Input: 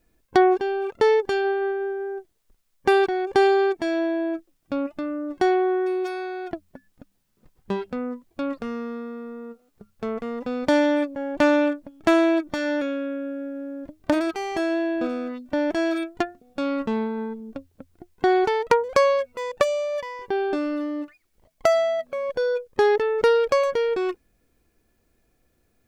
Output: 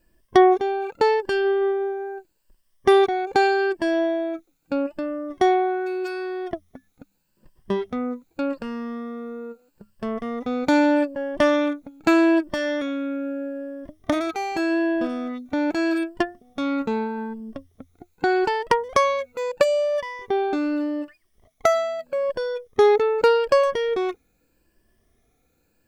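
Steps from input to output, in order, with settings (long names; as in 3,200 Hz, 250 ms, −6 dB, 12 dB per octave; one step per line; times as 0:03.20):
rippled gain that drifts along the octave scale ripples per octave 1.3, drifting +0.81 Hz, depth 10 dB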